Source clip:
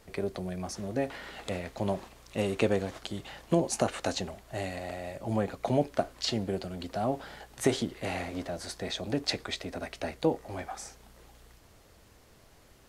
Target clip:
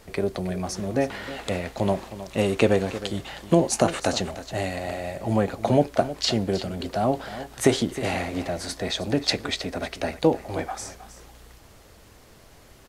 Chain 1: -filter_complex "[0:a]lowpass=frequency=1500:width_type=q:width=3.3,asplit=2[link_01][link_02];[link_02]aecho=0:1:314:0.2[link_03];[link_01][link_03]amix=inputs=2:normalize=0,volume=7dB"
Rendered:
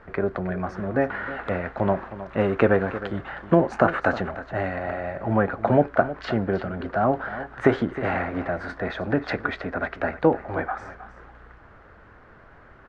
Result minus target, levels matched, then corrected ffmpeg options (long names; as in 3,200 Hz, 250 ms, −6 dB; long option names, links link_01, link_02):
2,000 Hz band +4.5 dB
-filter_complex "[0:a]asplit=2[link_01][link_02];[link_02]aecho=0:1:314:0.2[link_03];[link_01][link_03]amix=inputs=2:normalize=0,volume=7dB"